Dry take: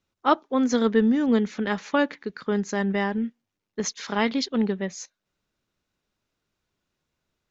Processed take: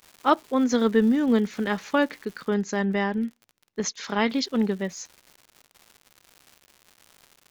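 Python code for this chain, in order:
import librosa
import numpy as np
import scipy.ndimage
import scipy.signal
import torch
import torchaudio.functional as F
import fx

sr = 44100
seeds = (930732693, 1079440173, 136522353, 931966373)

y = fx.dmg_crackle(x, sr, seeds[0], per_s=fx.steps((0.0, 400.0), (2.5, 38.0), (4.3, 220.0)), level_db=-38.0)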